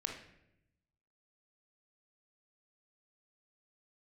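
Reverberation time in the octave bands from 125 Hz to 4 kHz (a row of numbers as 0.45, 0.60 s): 1.4, 1.1, 0.95, 0.70, 0.80, 0.60 s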